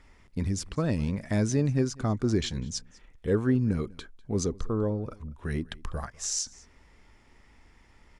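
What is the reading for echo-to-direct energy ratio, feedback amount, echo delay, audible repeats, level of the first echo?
-23.0 dB, no steady repeat, 0.198 s, 1, -23.0 dB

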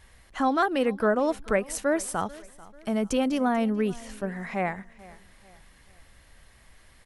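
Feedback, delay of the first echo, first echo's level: 42%, 0.44 s, -21.0 dB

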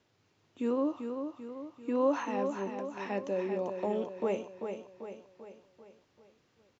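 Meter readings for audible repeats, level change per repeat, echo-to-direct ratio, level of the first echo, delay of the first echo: 5, -6.0 dB, -5.5 dB, -7.0 dB, 0.391 s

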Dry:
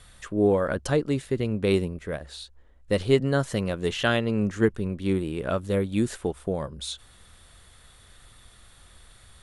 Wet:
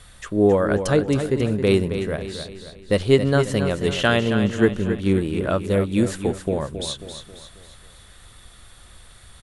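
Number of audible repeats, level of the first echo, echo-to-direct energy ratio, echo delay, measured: 4, -9.0 dB, -8.0 dB, 0.27 s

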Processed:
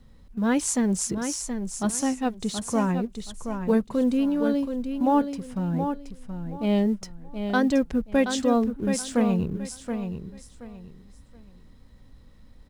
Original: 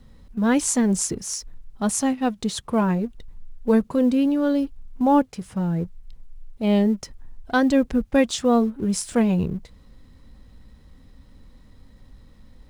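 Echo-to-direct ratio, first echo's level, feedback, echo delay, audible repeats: -7.0 dB, -7.5 dB, 25%, 0.725 s, 3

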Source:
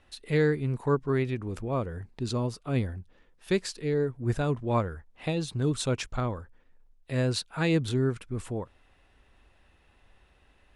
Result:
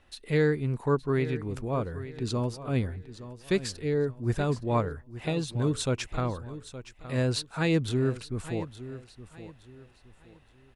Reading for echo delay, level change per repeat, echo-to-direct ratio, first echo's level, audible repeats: 0.868 s, -10.0 dB, -13.5 dB, -14.0 dB, 3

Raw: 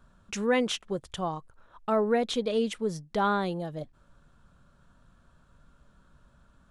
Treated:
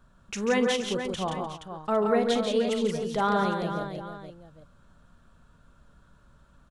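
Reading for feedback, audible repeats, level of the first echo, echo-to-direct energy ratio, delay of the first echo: no steady repeat, 6, -12.5 dB, -1.5 dB, 43 ms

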